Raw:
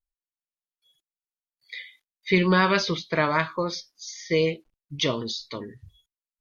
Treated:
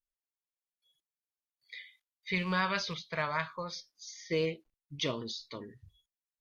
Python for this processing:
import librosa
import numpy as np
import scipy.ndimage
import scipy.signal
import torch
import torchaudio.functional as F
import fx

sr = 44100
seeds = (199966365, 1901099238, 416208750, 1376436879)

y = fx.rattle_buzz(x, sr, strikes_db=-25.0, level_db=-28.0)
y = fx.peak_eq(y, sr, hz=320.0, db=-14.5, octaves=0.83, at=(1.76, 3.79))
y = y * 10.0 ** (-8.5 / 20.0)